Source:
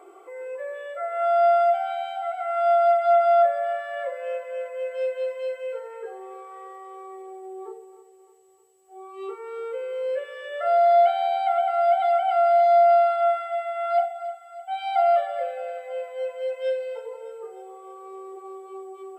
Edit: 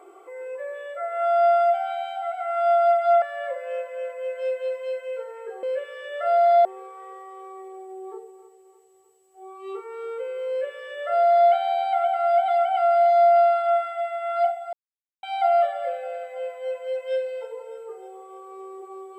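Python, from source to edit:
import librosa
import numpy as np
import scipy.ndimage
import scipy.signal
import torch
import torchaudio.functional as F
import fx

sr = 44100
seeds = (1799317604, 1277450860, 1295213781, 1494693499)

y = fx.edit(x, sr, fx.cut(start_s=3.22, length_s=0.56),
    fx.duplicate(start_s=10.03, length_s=1.02, to_s=6.19),
    fx.silence(start_s=14.27, length_s=0.5), tone=tone)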